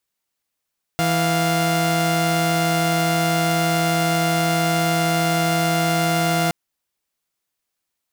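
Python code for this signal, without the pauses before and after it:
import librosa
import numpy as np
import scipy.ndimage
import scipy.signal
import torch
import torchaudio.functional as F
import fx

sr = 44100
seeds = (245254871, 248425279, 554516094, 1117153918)

y = fx.chord(sr, length_s=5.52, notes=(52, 77), wave='saw', level_db=-17.5)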